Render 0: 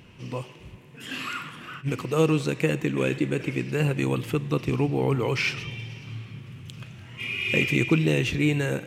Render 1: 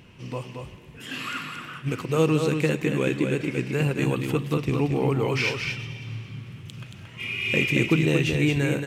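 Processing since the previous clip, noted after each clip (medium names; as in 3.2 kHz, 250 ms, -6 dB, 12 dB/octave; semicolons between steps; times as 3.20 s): delay 227 ms -5.5 dB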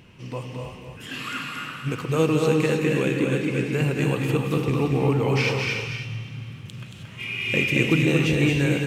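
gated-style reverb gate 340 ms rising, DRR 3 dB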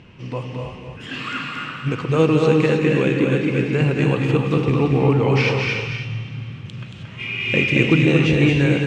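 distance through air 110 m; trim +5 dB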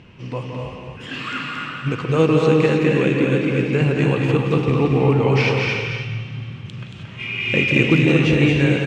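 speakerphone echo 170 ms, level -7 dB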